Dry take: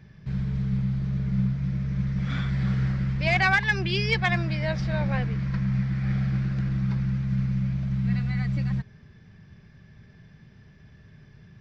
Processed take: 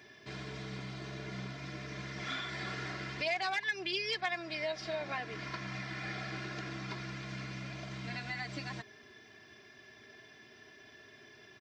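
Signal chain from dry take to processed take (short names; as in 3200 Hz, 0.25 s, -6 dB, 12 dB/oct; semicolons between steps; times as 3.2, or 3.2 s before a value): HPF 470 Hz 12 dB/oct; bell 1300 Hz -6 dB 2.3 oct; comb 2.9 ms, depth 82%; compressor 3:1, threshold -44 dBFS, peak gain reduction 17.5 dB; gain +7 dB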